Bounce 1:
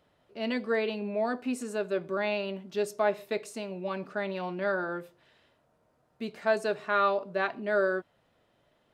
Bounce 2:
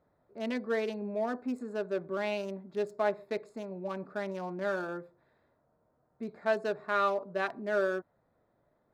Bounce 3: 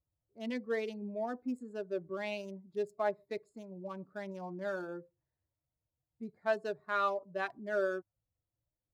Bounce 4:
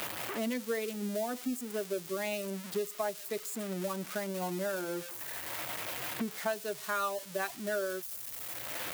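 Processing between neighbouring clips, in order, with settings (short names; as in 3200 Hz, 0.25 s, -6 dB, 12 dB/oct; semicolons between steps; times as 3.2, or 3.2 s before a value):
Wiener smoothing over 15 samples; gain -2.5 dB
per-bin expansion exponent 1.5; gain -1.5 dB
switching spikes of -32.5 dBFS; three-band squash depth 100%; gain +1.5 dB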